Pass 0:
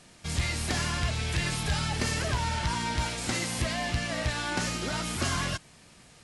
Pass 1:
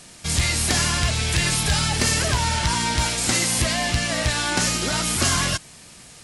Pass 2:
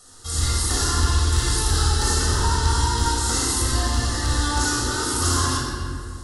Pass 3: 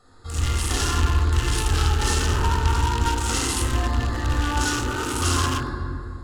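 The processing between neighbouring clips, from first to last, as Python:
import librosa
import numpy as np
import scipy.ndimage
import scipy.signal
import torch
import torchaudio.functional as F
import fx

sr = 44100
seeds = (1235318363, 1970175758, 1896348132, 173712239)

y1 = fx.high_shelf(x, sr, hz=4800.0, db=9.5)
y1 = y1 * 10.0 ** (6.5 / 20.0)
y2 = fx.fixed_phaser(y1, sr, hz=630.0, stages=6)
y2 = fx.room_shoebox(y2, sr, seeds[0], volume_m3=4000.0, walls='mixed', distance_m=6.6)
y2 = y2 * 10.0 ** (-5.5 / 20.0)
y3 = fx.wiener(y2, sr, points=15)
y3 = fx.peak_eq(y3, sr, hz=2800.0, db=12.0, octaves=0.77)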